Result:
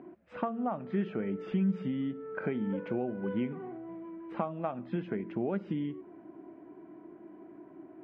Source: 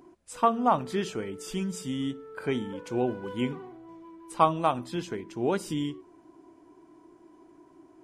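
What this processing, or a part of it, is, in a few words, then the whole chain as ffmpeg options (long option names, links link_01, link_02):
bass amplifier: -af "acompressor=threshold=-36dB:ratio=5,highpass=89,equalizer=frequency=91:width_type=q:width=4:gain=-5,equalizer=frequency=200:width_type=q:width=4:gain=9,equalizer=frequency=620:width_type=q:width=4:gain=4,equalizer=frequency=1000:width_type=q:width=4:gain=-7,lowpass=frequency=2300:width=0.5412,lowpass=frequency=2300:width=1.3066,volume=4dB"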